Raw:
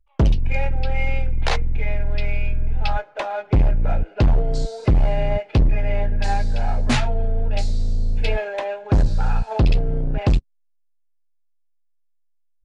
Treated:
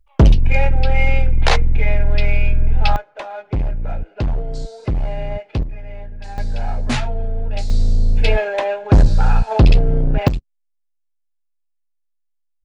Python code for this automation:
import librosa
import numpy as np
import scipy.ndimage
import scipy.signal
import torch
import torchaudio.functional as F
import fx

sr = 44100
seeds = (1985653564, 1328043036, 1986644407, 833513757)

y = fx.gain(x, sr, db=fx.steps((0.0, 6.5), (2.96, -4.0), (5.63, -11.5), (6.38, -1.0), (7.7, 6.0), (10.28, -5.0)))